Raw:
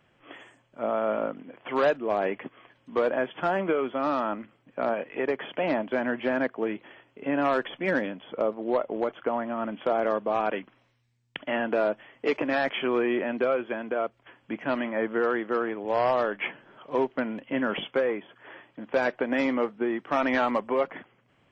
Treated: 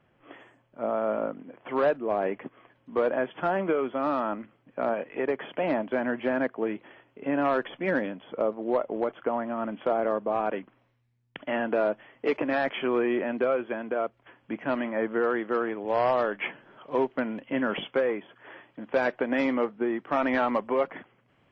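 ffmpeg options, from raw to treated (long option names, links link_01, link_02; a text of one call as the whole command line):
ffmpeg -i in.wav -af "asetnsamples=nb_out_samples=441:pad=0,asendcmd='2.99 lowpass f 2400;9.94 lowpass f 1400;11.39 lowpass f 2600;15.37 lowpass f 4600;19.65 lowpass f 2500;20.51 lowpass f 4000',lowpass=frequency=1500:poles=1" out.wav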